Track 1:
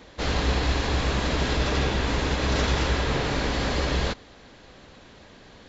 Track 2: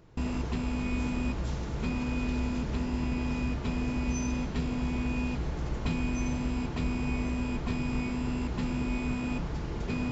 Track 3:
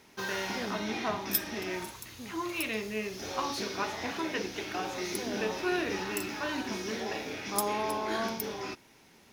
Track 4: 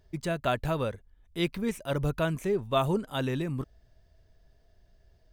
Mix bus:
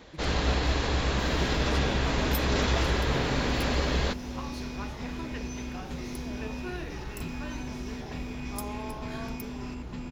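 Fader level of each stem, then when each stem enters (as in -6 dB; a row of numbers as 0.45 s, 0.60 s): -2.5 dB, -6.5 dB, -8.5 dB, -12.0 dB; 0.00 s, 1.35 s, 1.00 s, 0.00 s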